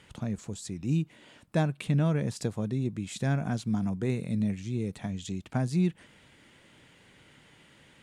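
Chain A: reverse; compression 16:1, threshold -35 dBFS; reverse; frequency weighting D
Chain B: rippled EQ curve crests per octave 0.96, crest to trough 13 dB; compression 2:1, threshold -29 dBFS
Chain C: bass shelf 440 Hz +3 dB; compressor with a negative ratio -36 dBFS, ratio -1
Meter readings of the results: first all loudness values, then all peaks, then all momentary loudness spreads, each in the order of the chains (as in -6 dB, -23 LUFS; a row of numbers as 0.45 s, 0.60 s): -42.0 LUFS, -33.0 LUFS, -36.0 LUFS; -21.5 dBFS, -19.0 dBFS, -13.5 dBFS; 10 LU, 7 LU, 15 LU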